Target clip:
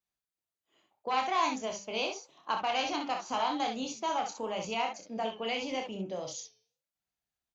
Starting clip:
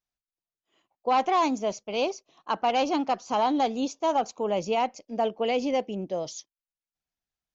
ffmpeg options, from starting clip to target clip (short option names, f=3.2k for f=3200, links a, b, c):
-filter_complex "[0:a]highpass=43,bandreject=f=5.4k:w=13,acrossover=split=120|990|2900[a][b][c][d];[b]acompressor=threshold=-36dB:ratio=6[e];[a][e][c][d]amix=inputs=4:normalize=0,flanger=delay=5.5:depth=7.2:regen=-89:speed=0.84:shape=sinusoidal,aecho=1:1:27|62|72:0.531|0.447|0.251,volume=2.5dB"